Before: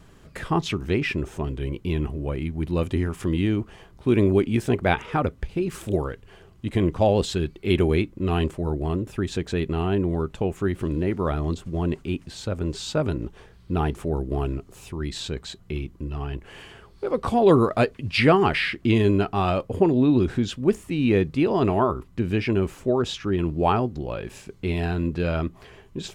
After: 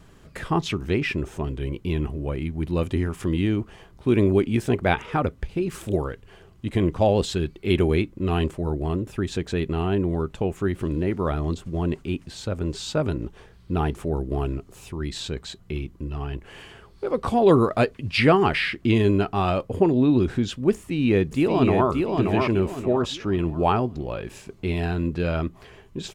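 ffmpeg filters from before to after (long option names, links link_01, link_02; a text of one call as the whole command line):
ffmpeg -i in.wav -filter_complex "[0:a]asplit=2[link_01][link_02];[link_02]afade=type=in:start_time=20.73:duration=0.01,afade=type=out:start_time=21.89:duration=0.01,aecho=0:1:580|1160|1740|2320|2900:0.668344|0.23392|0.0818721|0.0286552|0.0100293[link_03];[link_01][link_03]amix=inputs=2:normalize=0" out.wav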